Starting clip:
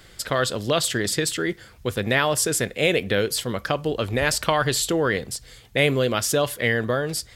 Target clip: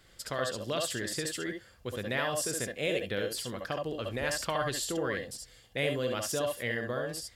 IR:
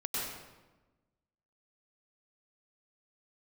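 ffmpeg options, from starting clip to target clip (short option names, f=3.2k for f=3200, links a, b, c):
-filter_complex "[1:a]atrim=start_sample=2205,atrim=end_sample=4410,asetrate=61740,aresample=44100[a];[0:a][a]afir=irnorm=-1:irlink=0,volume=-6.5dB"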